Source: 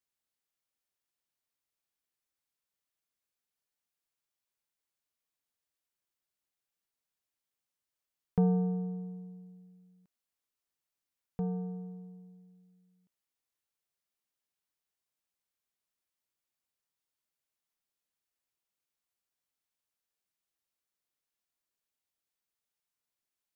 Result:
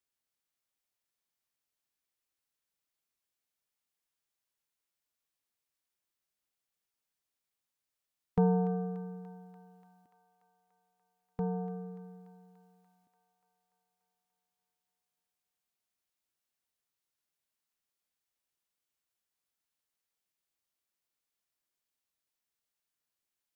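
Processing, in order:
formants moved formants +3 semitones
on a send: delay with a high-pass on its return 291 ms, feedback 69%, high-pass 1,400 Hz, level −9.5 dB

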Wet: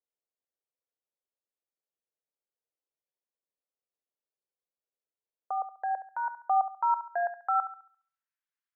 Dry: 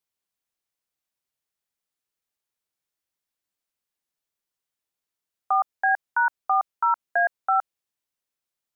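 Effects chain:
band-pass filter sweep 490 Hz → 1,700 Hz, 0:05.75–0:08.41
dynamic equaliser 1,700 Hz, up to −5 dB, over −47 dBFS, Q 1.6
feedback echo with a high-pass in the loop 69 ms, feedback 46%, high-pass 780 Hz, level −9.5 dB

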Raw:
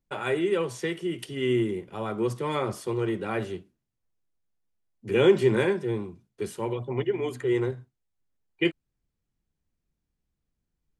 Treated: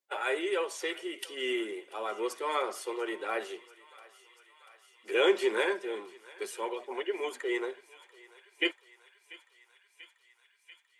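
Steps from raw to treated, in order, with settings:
spectral magnitudes quantised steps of 15 dB
Bessel high-pass filter 590 Hz, order 6
feedback echo with a high-pass in the loop 689 ms, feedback 81%, high-pass 860 Hz, level −19.5 dB
level +1 dB

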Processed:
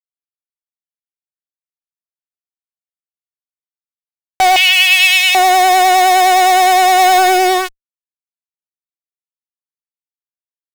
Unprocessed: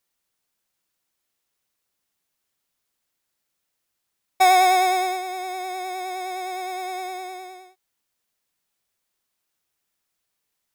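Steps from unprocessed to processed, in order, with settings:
in parallel at 0 dB: compressor whose output falls as the input rises −25 dBFS, ratio −1
on the sum: fuzz pedal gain 43 dB, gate −35 dBFS
0:04.56–0:05.35: high-pass with resonance 2,700 Hz, resonance Q 7.3
0:06.99–0:07.58: leveller curve on the samples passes 1
level +5 dB

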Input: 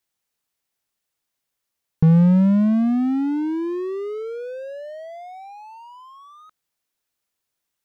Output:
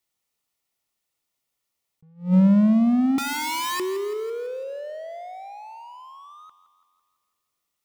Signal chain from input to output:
0:03.18–0:03.80: wrap-around overflow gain 23 dB
Butterworth band-reject 1,600 Hz, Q 7.4
on a send: feedback echo with a high-pass in the loop 167 ms, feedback 55%, high-pass 250 Hz, level −13.5 dB
on the sum: level that may rise only so fast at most 200 dB per second

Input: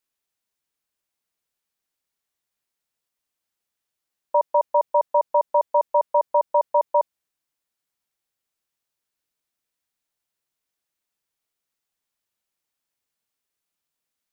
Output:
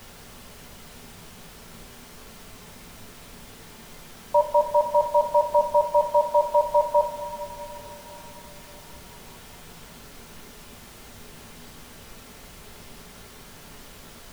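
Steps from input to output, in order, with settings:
low-shelf EQ 470 Hz −6 dB
background noise pink −47 dBFS
coupled-rooms reverb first 0.3 s, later 5 s, from −19 dB, DRR 2 dB

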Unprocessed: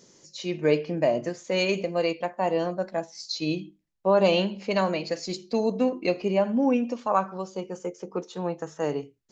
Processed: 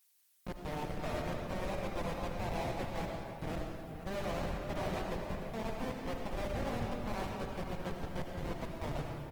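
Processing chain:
lower of the sound and its delayed copy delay 1.2 ms
reversed playback
downward compressor 8 to 1, threshold −37 dBFS, peak gain reduction 19 dB
reversed playback
three-way crossover with the lows and the highs turned down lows −17 dB, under 320 Hz, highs −19 dB, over 2,700 Hz
tuned comb filter 75 Hz, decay 1.1 s, harmonics all, mix 70%
comparator with hysteresis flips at −49 dBFS
hum removal 295.6 Hz, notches 9
on a send at −1 dB: convolution reverb RT60 2.2 s, pre-delay 45 ms
on the sum: background noise violet −74 dBFS
high-shelf EQ 5,700 Hz −11 dB
slap from a distant wall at 83 metres, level −10 dB
level +15.5 dB
Opus 20 kbit/s 48,000 Hz

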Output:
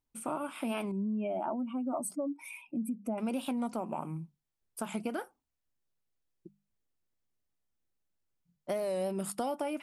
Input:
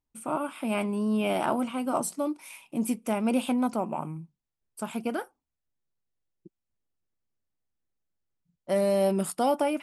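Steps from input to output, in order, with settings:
0:00.92–0:03.18: expanding power law on the bin magnitudes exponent 1.9
mains-hum notches 50/100/150/200 Hz
downward compressor 4 to 1, threshold −32 dBFS, peak gain reduction 10.5 dB
wow of a warped record 45 rpm, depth 100 cents

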